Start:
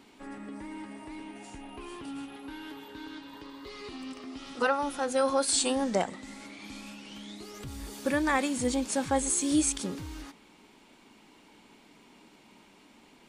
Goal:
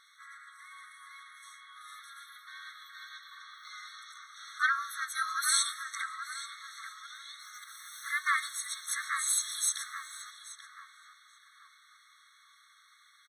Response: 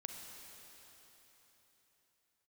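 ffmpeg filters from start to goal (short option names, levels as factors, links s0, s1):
-filter_complex "[0:a]asplit=2[s0][s1];[1:a]atrim=start_sample=2205,asetrate=70560,aresample=44100[s2];[s1][s2]afir=irnorm=-1:irlink=0,volume=0.251[s3];[s0][s3]amix=inputs=2:normalize=0,asplit=3[s4][s5][s6];[s5]asetrate=22050,aresample=44100,atempo=2,volume=0.251[s7];[s6]asetrate=52444,aresample=44100,atempo=0.840896,volume=0.708[s8];[s4][s7][s8]amix=inputs=3:normalize=0,asplit=2[s9][s10];[s10]adelay=831,lowpass=f=1400:p=1,volume=0.631,asplit=2[s11][s12];[s12]adelay=831,lowpass=f=1400:p=1,volume=0.49,asplit=2[s13][s14];[s14]adelay=831,lowpass=f=1400:p=1,volume=0.49,asplit=2[s15][s16];[s16]adelay=831,lowpass=f=1400:p=1,volume=0.49,asplit=2[s17][s18];[s18]adelay=831,lowpass=f=1400:p=1,volume=0.49,asplit=2[s19][s20];[s20]adelay=831,lowpass=f=1400:p=1,volume=0.49[s21];[s9][s11][s13][s15][s17][s19][s21]amix=inputs=7:normalize=0,afftfilt=real='re*eq(mod(floor(b*sr/1024/1100),2),1)':imag='im*eq(mod(floor(b*sr/1024/1100),2),1)':win_size=1024:overlap=0.75"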